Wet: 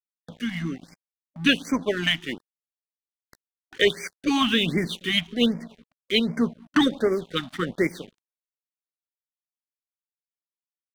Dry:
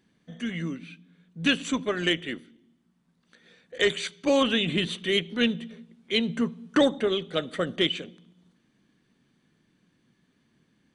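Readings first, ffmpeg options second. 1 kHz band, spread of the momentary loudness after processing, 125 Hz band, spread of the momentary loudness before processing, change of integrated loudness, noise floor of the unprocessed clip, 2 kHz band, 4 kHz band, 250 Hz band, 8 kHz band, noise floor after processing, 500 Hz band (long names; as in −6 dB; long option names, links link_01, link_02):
+3.0 dB, 12 LU, +2.5 dB, 13 LU, +2.0 dB, −70 dBFS, +2.5 dB, +2.0 dB, +3.0 dB, +0.5 dB, below −85 dBFS, 0.0 dB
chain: -af "equalizer=frequency=7300:width=8:gain=-14,aeval=exprs='sgn(val(0))*max(abs(val(0))-0.00631,0)':channel_layout=same,acompressor=mode=upward:threshold=-40dB:ratio=2.5,afftfilt=real='re*(1-between(b*sr/1024,400*pow(3400/400,0.5+0.5*sin(2*PI*1.3*pts/sr))/1.41,400*pow(3400/400,0.5+0.5*sin(2*PI*1.3*pts/sr))*1.41))':imag='im*(1-between(b*sr/1024,400*pow(3400/400,0.5+0.5*sin(2*PI*1.3*pts/sr))/1.41,400*pow(3400/400,0.5+0.5*sin(2*PI*1.3*pts/sr))*1.41))':win_size=1024:overlap=0.75,volume=4dB"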